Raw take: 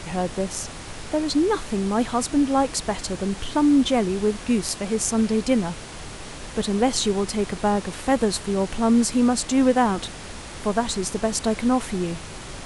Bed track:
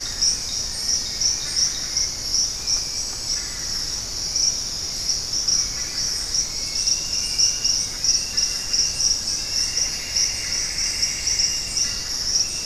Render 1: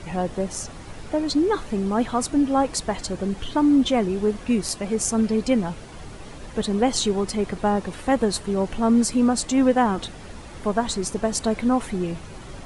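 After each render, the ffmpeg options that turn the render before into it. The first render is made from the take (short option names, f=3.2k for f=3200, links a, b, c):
-af "afftdn=nr=9:nf=-38"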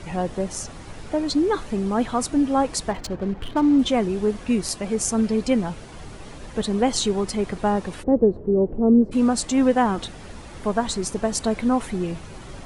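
-filter_complex "[0:a]asettb=1/sr,asplit=3[a][b][c];[a]atrim=end=2.914[d];[b]atrim=start=2.91:end=3.79,asetpts=PTS-STARTPTS,afade=t=in:d=0.004:c=qsin,afade=t=out:st=0.876:d=0.004:c=qsin,adynamicsmooth=sensitivity=6.5:basefreq=1.1k[e];[c]atrim=start=3.786[f];[d][e]acrossfade=d=0.004:c1=hsin:c2=qsin[g];[g][f]acrossfade=d=0.004:c1=qsin:c2=hsin,asplit=3[h][i][j];[h]afade=t=out:st=8.02:d=0.02[k];[i]lowpass=f=430:t=q:w=2.1,afade=t=in:st=8.02:d=0.02,afade=t=out:st=9.11:d=0.02[l];[j]afade=t=in:st=9.11:d=0.02[m];[k][l][m]amix=inputs=3:normalize=0"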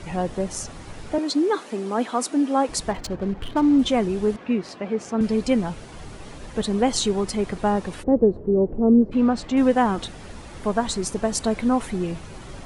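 -filter_complex "[0:a]asettb=1/sr,asplit=3[a][b][c];[a]atrim=end=1.184[d];[b]atrim=start=1.18:end=2.69,asetpts=PTS-STARTPTS,afade=t=in:d=0.004:c=qsin,afade=t=out:st=1.506:d=0.004:c=qsin,highpass=f=240:w=0.5412,highpass=f=240:w=1.3066[e];[c]atrim=start=2.686[f];[d][e]acrossfade=d=0.004:c1=hsin:c2=qsin[g];[g][f]acrossfade=d=0.004:c1=qsin:c2=hsin,asettb=1/sr,asplit=3[h][i][j];[h]atrim=end=4.364[k];[i]atrim=start=4.36:end=5.21,asetpts=PTS-STARTPTS,afade=t=in:d=0.004:c=qsin,afade=t=out:st=0.846:d=0.004:c=qsin,highpass=190,lowpass=2.7k[l];[j]atrim=start=5.206[m];[k][l]acrossfade=d=0.004:c1=hsin:c2=qsin[n];[n][m]acrossfade=d=0.004:c1=qsin:c2=hsin,asettb=1/sr,asplit=3[o][p][q];[o]atrim=end=8.484[r];[p]atrim=start=8.48:end=9.57,asetpts=PTS-STARTPTS,afade=t=in:d=0.004:c=qsin,afade=t=out:st=1.086:d=0.004:c=qsin,lowpass=3.2k[s];[q]atrim=start=9.566[t];[r][s]acrossfade=d=0.004:c1=hsin:c2=qsin[u];[u][t]acrossfade=d=0.004:c1=qsin:c2=hsin"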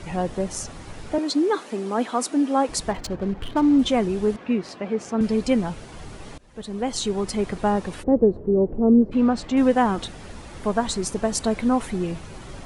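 -filter_complex "[0:a]asplit=2[a][b];[a]atrim=end=6.38,asetpts=PTS-STARTPTS,afade=t=out:st=6.376:d=0.004:c=hsin:silence=0.0841395[c];[b]atrim=start=6.38,asetpts=PTS-STARTPTS,afade=t=in:d=1:silence=0.0841395[d];[c][d]concat=n=2:v=0:a=1"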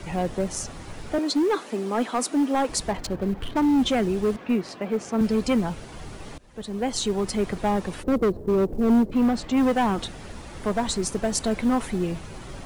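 -filter_complex "[0:a]acrossover=split=180|1500[a][b][c];[b]asoftclip=type=hard:threshold=-19dB[d];[a][d][c]amix=inputs=3:normalize=0,acrusher=bits=9:mode=log:mix=0:aa=0.000001"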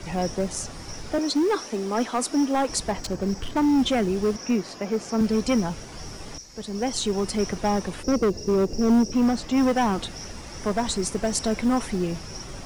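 -filter_complex "[1:a]volume=-20.5dB[a];[0:a][a]amix=inputs=2:normalize=0"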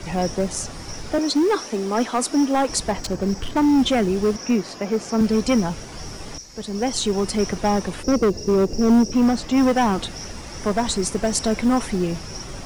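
-af "volume=3.5dB"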